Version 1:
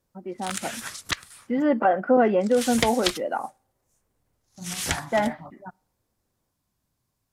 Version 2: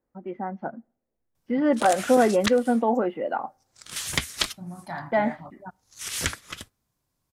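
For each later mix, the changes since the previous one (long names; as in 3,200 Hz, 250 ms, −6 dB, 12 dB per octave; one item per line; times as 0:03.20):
background: entry +1.35 s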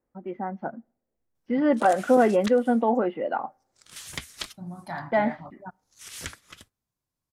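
background −9.5 dB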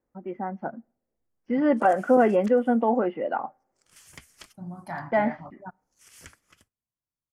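background −10.5 dB
master: add parametric band 3,800 Hz −12 dB 0.31 octaves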